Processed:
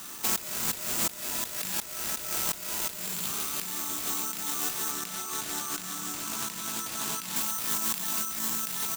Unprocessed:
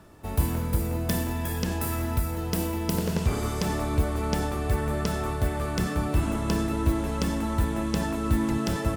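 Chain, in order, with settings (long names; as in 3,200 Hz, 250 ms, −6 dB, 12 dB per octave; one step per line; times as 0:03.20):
high-pass filter 160 Hz 24 dB per octave
spectral tilt +3 dB per octave
phaser with its sweep stopped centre 2,100 Hz, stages 6
double-tracking delay 38 ms −4 dB
single-tap delay 965 ms −16 dB
bad sample-rate conversion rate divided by 6×, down none, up zero stuff
compressor whose output falls as the input rises −33 dBFS, ratio −1
high-shelf EQ 12,000 Hz +4.5 dB, from 0:04.91 −2.5 dB, from 0:07.36 +6.5 dB
highs frequency-modulated by the lows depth 0.26 ms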